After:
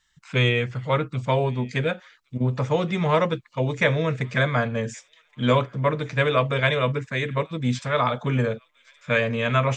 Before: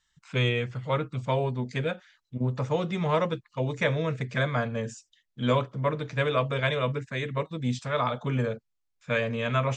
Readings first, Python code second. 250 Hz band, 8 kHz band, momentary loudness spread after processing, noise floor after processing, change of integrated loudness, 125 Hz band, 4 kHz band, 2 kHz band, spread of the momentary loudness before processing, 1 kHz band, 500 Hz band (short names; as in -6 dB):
+4.5 dB, +4.5 dB, 6 LU, -64 dBFS, +5.0 dB, +4.5 dB, +5.0 dB, +6.5 dB, 6 LU, +5.0 dB, +4.5 dB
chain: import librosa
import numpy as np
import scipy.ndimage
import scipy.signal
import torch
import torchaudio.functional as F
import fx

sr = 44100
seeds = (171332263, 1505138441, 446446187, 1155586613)

p1 = fx.peak_eq(x, sr, hz=2000.0, db=2.5, octaves=0.77)
p2 = p1 + fx.echo_wet_highpass(p1, sr, ms=1120, feedback_pct=54, hz=1800.0, wet_db=-24, dry=0)
y = F.gain(torch.from_numpy(p2), 4.5).numpy()